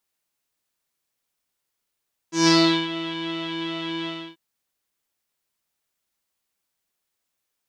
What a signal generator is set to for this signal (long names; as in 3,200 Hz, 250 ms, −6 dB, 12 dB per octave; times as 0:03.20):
subtractive patch with pulse-width modulation E4, interval 0 semitones, detune 16 cents, sub −10.5 dB, filter lowpass, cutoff 3,300 Hz, Q 5.5, filter envelope 1 octave, filter decay 0.48 s, filter sustain 0%, attack 157 ms, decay 0.40 s, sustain −15.5 dB, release 0.29 s, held 1.75 s, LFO 2.6 Hz, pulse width 45%, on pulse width 5%